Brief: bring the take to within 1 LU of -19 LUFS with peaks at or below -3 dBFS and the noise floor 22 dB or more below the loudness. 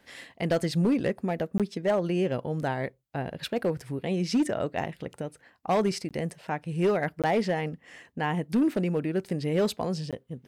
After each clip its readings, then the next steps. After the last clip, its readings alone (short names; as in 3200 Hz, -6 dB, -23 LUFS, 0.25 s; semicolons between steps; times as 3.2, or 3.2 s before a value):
clipped 0.8%; flat tops at -18.5 dBFS; dropouts 4; longest dropout 17 ms; loudness -29.0 LUFS; peak -18.5 dBFS; loudness target -19.0 LUFS
-> clip repair -18.5 dBFS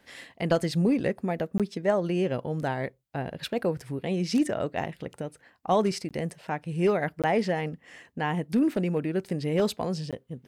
clipped 0.0%; dropouts 4; longest dropout 17 ms
-> interpolate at 1.58/6.09/7.22/10.11, 17 ms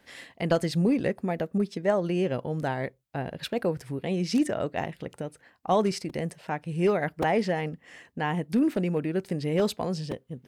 dropouts 0; loudness -28.5 LUFS; peak -9.5 dBFS; loudness target -19.0 LUFS
-> gain +9.5 dB; limiter -3 dBFS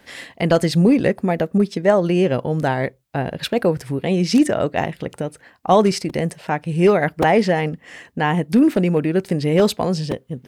loudness -19.0 LUFS; peak -3.0 dBFS; noise floor -54 dBFS